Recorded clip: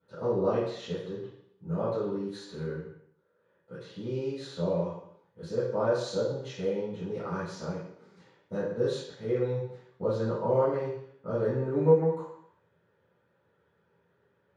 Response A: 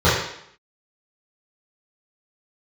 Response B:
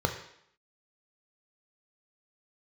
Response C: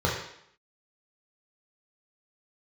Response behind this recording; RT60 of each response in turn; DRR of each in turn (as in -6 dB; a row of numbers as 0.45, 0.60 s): A; 0.70, 0.70, 0.70 s; -13.0, 4.0, -4.0 dB